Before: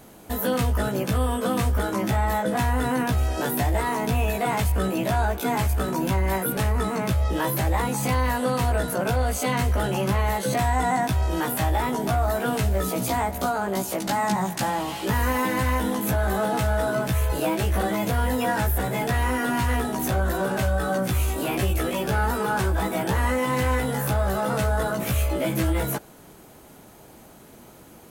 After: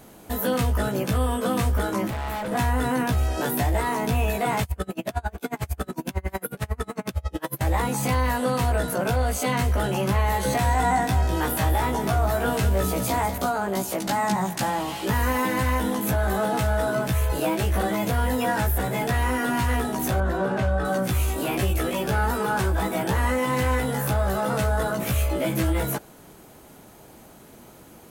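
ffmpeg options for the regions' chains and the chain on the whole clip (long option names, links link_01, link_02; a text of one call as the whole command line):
ffmpeg -i in.wav -filter_complex "[0:a]asettb=1/sr,asplit=3[link_01][link_02][link_03];[link_01]atrim=end=2.074[link_04];[link_02]atrim=start=2.07:end=2.52,asetpts=PTS-STARTPTS,afade=type=in:duration=0.004:curve=qsin,afade=type=out:start_time=0.446:duration=0.004:curve=qsin,equalizer=frequency=5200:width_type=o:width=0.83:gain=-6.5,volume=27.5dB,asoftclip=hard,volume=-27.5dB[link_05];[link_03]atrim=start=2.516[link_06];[link_04][link_05]acrossfade=duration=0.004:curve1=hsin:curve2=qsin[link_07];[link_07][link_06]acrossfade=duration=0.004:curve1=qsin:curve2=hsin,asettb=1/sr,asplit=3[link_08][link_09][link_10];[link_08]atrim=end=4.634[link_11];[link_09]atrim=start=4.63:end=7.61,asetpts=PTS-STARTPTS,afade=type=in:duration=0.004:curve=qsin,afade=type=out:start_time=2.976:duration=0.004:curve=qsin,bandreject=frequency=930:width=16,aeval=exprs='val(0)*pow(10,-33*(0.5-0.5*cos(2*PI*11*n/s))/20)':channel_layout=same[link_12];[link_10]atrim=start=7.606[link_13];[link_11][link_12]acrossfade=duration=0.004:curve1=hsin:curve2=qsin[link_14];[link_14][link_13]acrossfade=duration=0.004:curve1=qsin:curve2=hsin,asettb=1/sr,asplit=3[link_15][link_16][link_17];[link_15]atrim=end=10.124[link_18];[link_16]atrim=start=10.12:end=13.38,asetpts=PTS-STARTPTS,afade=type=in:duration=0.004:curve=qsin,afade=type=out:start_time=3.256:duration=0.004:curve=qsin,asplit=2[link_19][link_20];[link_20]adelay=26,volume=-11dB[link_21];[link_19][link_21]amix=inputs=2:normalize=0,atrim=end_sample=143766,aecho=1:1:200:0.316,atrim=end_sample=143766[link_22];[link_17]atrim=start=13.376[link_23];[link_18][link_22]acrossfade=duration=0.004:curve1=hsin:curve2=qsin[link_24];[link_24][link_23]acrossfade=duration=0.004:curve1=qsin:curve2=hsin,asettb=1/sr,asplit=3[link_25][link_26][link_27];[link_25]atrim=end=20.204[link_28];[link_26]atrim=start=20.2:end=20.85,asetpts=PTS-STARTPTS,afade=type=in:duration=0.004:curve=qsin,afade=type=out:start_time=0.646:duration=0.004:curve=qsin,highpass=52,aemphasis=mode=reproduction:type=75fm[link_29];[link_27]atrim=start=20.846[link_30];[link_28][link_29]acrossfade=duration=0.004:curve1=hsin:curve2=qsin[link_31];[link_31][link_30]acrossfade=duration=0.004:curve1=qsin:curve2=hsin" out.wav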